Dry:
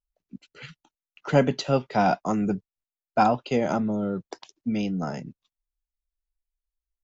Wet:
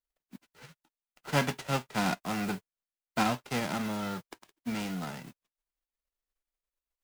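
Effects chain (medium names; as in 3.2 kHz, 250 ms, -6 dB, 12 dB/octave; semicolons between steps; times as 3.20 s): formants flattened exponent 0.3; peaking EQ 6.1 kHz -8 dB 1.7 oct; delay time shaken by noise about 2.4 kHz, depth 0.032 ms; trim -7 dB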